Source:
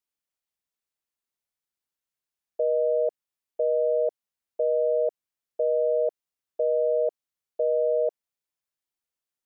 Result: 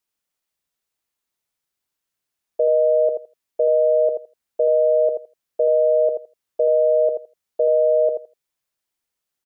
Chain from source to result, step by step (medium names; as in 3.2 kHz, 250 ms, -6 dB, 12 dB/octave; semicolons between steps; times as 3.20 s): feedback delay 82 ms, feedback 15%, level -6.5 dB; trim +6.5 dB